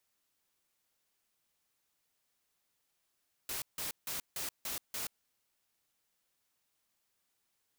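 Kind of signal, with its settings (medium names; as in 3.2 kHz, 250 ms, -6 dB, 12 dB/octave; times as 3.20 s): noise bursts white, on 0.13 s, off 0.16 s, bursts 6, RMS -38.5 dBFS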